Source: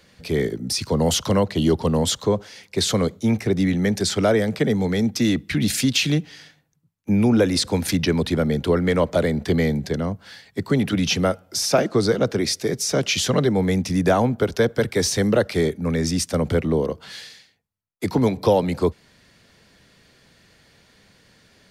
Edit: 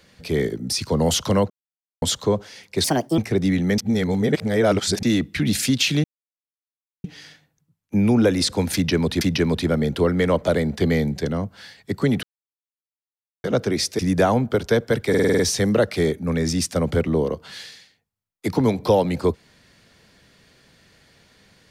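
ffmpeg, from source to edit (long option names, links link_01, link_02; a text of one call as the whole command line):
ffmpeg -i in.wav -filter_complex "[0:a]asplit=18[link_01][link_02][link_03][link_04][link_05][link_06][link_07][link_08][link_09][link_10][link_11][link_12][link_13][link_14][link_15][link_16][link_17][link_18];[link_01]atrim=end=1.5,asetpts=PTS-STARTPTS,afade=type=out:start_time=1.496:duration=0.004:curve=hsin[link_19];[link_02]atrim=start=1.5:end=2.02,asetpts=PTS-STARTPTS,volume=0[link_20];[link_03]atrim=start=2.02:end=2.844,asetpts=PTS-STARTPTS,afade=type=in:duration=0.004:curve=hsin[link_21];[link_04]atrim=start=2.84:end=3.33,asetpts=PTS-STARTPTS,asetrate=63504,aresample=44100,atrim=end_sample=15006,asetpts=PTS-STARTPTS[link_22];[link_05]atrim=start=3.326:end=3.932[link_23];[link_06]atrim=start=3.928:end=5.182,asetpts=PTS-STARTPTS,areverse[link_24];[link_07]atrim=start=5.178:end=6.19,asetpts=PTS-STARTPTS,afade=type=out:start_time=1.008:duration=0.004:curve=hsin,apad=pad_dur=1[link_25];[link_08]atrim=start=6.19:end=8.362,asetpts=PTS-STARTPTS,afade=type=in:duration=0.004:curve=hsin[link_26];[link_09]atrim=start=7.888:end=10.91,asetpts=PTS-STARTPTS,afade=type=out:start_time=3.018:duration=0.004:curve=hsin[link_27];[link_10]atrim=start=10.91:end=12.12,asetpts=PTS-STARTPTS,volume=0[link_28];[link_11]atrim=start=12.12:end=12.672,asetpts=PTS-STARTPTS,afade=type=in:duration=0.004:curve=hsin[link_29];[link_12]atrim=start=13.868:end=15.022[link_30];[link_13]atrim=start=14.968:end=15.022[link_31];[link_14]atrim=start=14.968:end=15.022[link_32];[link_15]atrim=start=14.968:end=15.022[link_33];[link_16]atrim=start=14.968:end=15.022[link_34];[link_17]atrim=start=14.968:end=15.022[link_35];[link_18]atrim=start=14.968[link_36];[link_19][link_20][link_21]concat=n=3:v=0:a=1[link_37];[link_37][link_22]acrossfade=duration=0.004:curve1=hsin:curve2=hsin[link_38];[link_38][link_23]acrossfade=duration=0.004:curve1=hsin:curve2=hsin[link_39];[link_39][link_24]acrossfade=duration=0.004:curve1=hsin:curve2=hsin[link_40];[link_25][link_26]concat=n=2:v=0:a=1[link_41];[link_40][link_41]acrossfade=duration=0.004:curve1=hsin:curve2=hsin[link_42];[link_27][link_28][link_29]concat=n=3:v=0:a=1[link_43];[link_42][link_43]acrossfade=duration=0.004:curve1=hsin:curve2=hsin[link_44];[link_44][link_30]acrossfade=duration=0.004:curve1=hsin:curve2=hsin[link_45];[link_45][link_31]acrossfade=duration=0.004:curve1=hsin:curve2=hsin[link_46];[link_46][link_32]acrossfade=duration=0.004:curve1=hsin:curve2=hsin[link_47];[link_47][link_33]acrossfade=duration=0.004:curve1=hsin:curve2=hsin[link_48];[link_48][link_34]acrossfade=duration=0.004:curve1=hsin:curve2=hsin[link_49];[link_49][link_35]acrossfade=duration=0.004:curve1=hsin:curve2=hsin[link_50];[link_50][link_36]acrossfade=duration=0.004:curve1=hsin:curve2=hsin" out.wav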